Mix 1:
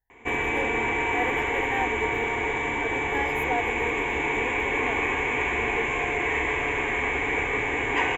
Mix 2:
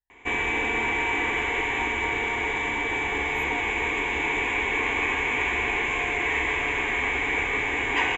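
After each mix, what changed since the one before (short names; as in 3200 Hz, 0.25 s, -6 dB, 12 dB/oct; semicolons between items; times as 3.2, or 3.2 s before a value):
speech -10.0 dB; master: add graphic EQ 125/500/4000 Hz -4/-4/+6 dB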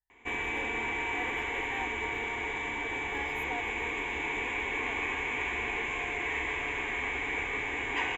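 background -7.5 dB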